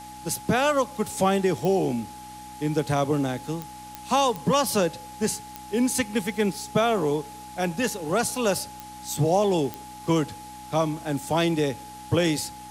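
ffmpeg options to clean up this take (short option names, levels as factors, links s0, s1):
-af "adeclick=t=4,bandreject=f=62.6:t=h:w=4,bandreject=f=125.2:t=h:w=4,bandreject=f=187.8:t=h:w=4,bandreject=f=250.4:t=h:w=4,bandreject=f=313:t=h:w=4,bandreject=f=840:w=30,afwtdn=0.0045"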